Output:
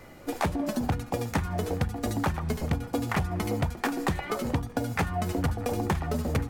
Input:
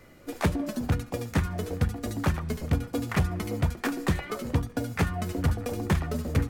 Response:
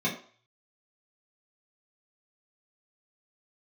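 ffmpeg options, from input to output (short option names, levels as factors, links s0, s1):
-af "equalizer=f=820:w=2.8:g=7,acompressor=threshold=0.0398:ratio=6,volume=1.58"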